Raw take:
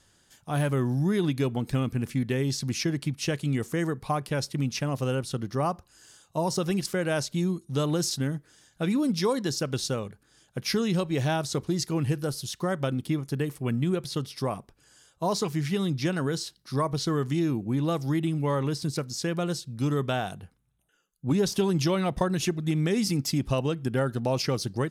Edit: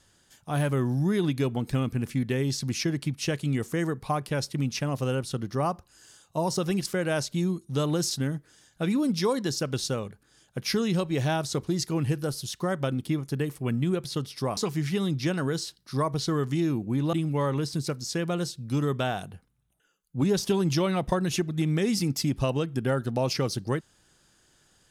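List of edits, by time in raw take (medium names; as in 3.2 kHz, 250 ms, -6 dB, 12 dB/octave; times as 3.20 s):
14.57–15.36 s: delete
17.92–18.22 s: delete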